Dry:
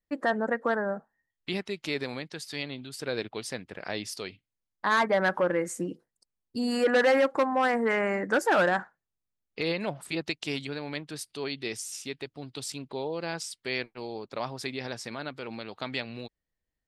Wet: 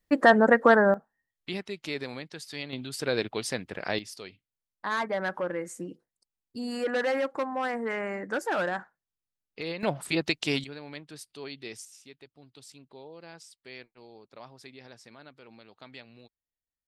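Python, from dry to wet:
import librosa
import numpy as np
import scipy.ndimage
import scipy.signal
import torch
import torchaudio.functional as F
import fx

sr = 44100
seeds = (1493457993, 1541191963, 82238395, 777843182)

y = fx.gain(x, sr, db=fx.steps((0.0, 9.0), (0.94, -2.5), (2.73, 4.0), (3.99, -5.5), (9.83, 4.5), (10.64, -6.5), (11.85, -13.5)))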